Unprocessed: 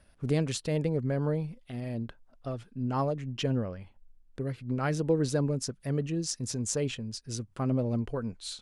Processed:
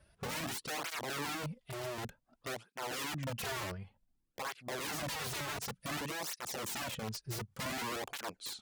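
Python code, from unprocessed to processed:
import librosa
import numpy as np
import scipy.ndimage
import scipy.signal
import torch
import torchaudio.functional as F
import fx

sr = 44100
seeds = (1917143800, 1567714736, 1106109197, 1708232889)

y = (np.mod(10.0 ** (31.0 / 20.0) * x + 1.0, 2.0) - 1.0) / 10.0 ** (31.0 / 20.0)
y = fx.cheby_harmonics(y, sr, harmonics=(8,), levels_db=(-37,), full_scale_db=-31.0)
y = fx.flanger_cancel(y, sr, hz=0.55, depth_ms=4.3)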